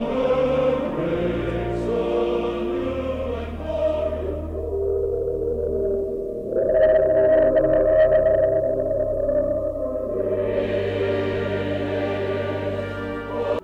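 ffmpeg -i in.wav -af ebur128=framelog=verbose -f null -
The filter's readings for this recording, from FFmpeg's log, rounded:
Integrated loudness:
  I:         -22.2 LUFS
  Threshold: -32.2 LUFS
Loudness range:
  LRA:         6.4 LU
  Threshold: -41.9 LUFS
  LRA low:   -25.1 LUFS
  LRA high:  -18.7 LUFS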